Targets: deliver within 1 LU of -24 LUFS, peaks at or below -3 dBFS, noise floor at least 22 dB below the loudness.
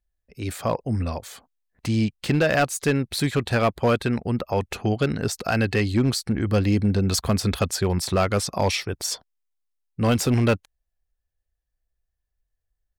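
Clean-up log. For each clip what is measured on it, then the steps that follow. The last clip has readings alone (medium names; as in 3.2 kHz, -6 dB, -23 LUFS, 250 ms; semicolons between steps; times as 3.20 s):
clipped samples 0.6%; clipping level -13.5 dBFS; loudness -23.5 LUFS; peak level -13.5 dBFS; loudness target -24.0 LUFS
-> clip repair -13.5 dBFS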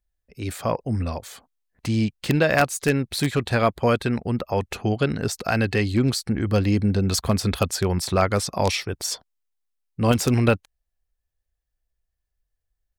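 clipped samples 0.0%; loudness -23.0 LUFS; peak level -4.5 dBFS; loudness target -24.0 LUFS
-> trim -1 dB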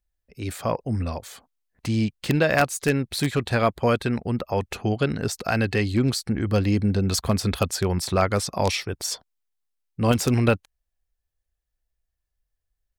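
loudness -24.0 LUFS; peak level -5.5 dBFS; noise floor -81 dBFS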